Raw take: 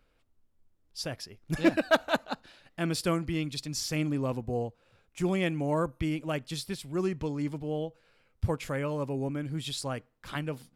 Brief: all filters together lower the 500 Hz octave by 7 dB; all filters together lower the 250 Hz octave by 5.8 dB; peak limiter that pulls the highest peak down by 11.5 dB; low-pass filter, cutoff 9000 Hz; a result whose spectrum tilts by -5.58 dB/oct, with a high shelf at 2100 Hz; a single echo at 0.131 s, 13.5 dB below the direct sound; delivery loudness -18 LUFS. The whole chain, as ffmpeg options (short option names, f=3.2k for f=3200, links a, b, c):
-af "lowpass=9k,equalizer=f=250:t=o:g=-6,equalizer=f=500:t=o:g=-7,highshelf=f=2.1k:g=-8.5,alimiter=level_in=3.5dB:limit=-24dB:level=0:latency=1,volume=-3.5dB,aecho=1:1:131:0.211,volume=21dB"